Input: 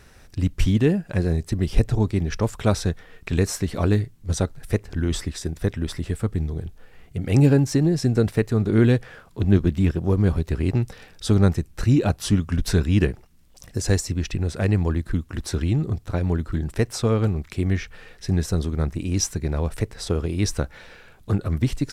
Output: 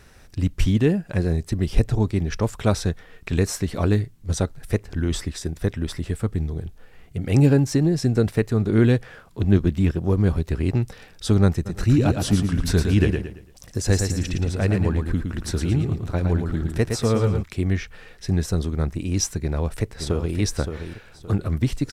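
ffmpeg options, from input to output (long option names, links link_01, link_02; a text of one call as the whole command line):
ffmpeg -i in.wav -filter_complex "[0:a]asplit=3[link_01][link_02][link_03];[link_01]afade=type=out:start_time=11.65:duration=0.02[link_04];[link_02]aecho=1:1:113|226|339|452:0.531|0.175|0.0578|0.0191,afade=type=in:start_time=11.65:duration=0.02,afade=type=out:start_time=17.42:duration=0.02[link_05];[link_03]afade=type=in:start_time=17.42:duration=0.02[link_06];[link_04][link_05][link_06]amix=inputs=3:normalize=0,asplit=2[link_07][link_08];[link_08]afade=type=in:start_time=19.4:duration=0.01,afade=type=out:start_time=20.36:duration=0.01,aecho=0:1:570|1140|1710|2280:0.398107|0.119432|0.0358296|0.0107489[link_09];[link_07][link_09]amix=inputs=2:normalize=0" out.wav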